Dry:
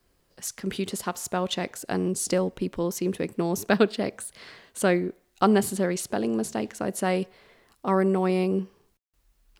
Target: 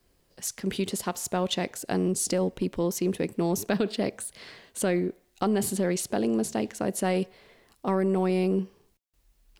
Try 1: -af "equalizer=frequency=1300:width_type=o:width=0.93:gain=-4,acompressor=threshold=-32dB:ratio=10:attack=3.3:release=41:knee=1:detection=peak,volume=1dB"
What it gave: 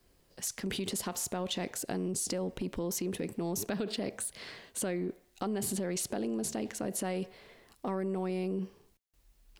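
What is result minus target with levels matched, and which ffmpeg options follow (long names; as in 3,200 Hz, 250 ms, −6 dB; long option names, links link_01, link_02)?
downward compressor: peak gain reduction +9 dB
-af "equalizer=frequency=1300:width_type=o:width=0.93:gain=-4,acompressor=threshold=-22dB:ratio=10:attack=3.3:release=41:knee=1:detection=peak,volume=1dB"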